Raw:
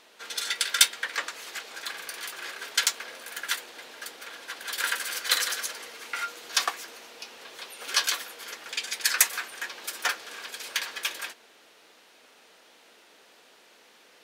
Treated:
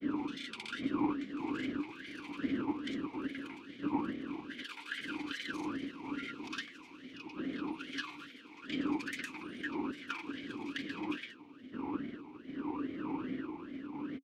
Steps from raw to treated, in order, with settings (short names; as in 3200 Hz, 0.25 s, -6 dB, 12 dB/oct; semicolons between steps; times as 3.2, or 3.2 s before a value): wind noise 640 Hz -28 dBFS; compressor 3:1, threshold -27 dBFS, peak gain reduction 13 dB; grains, grains 20/s, pitch spread up and down by 0 st; vowel sweep i-u 2.4 Hz; gain +6 dB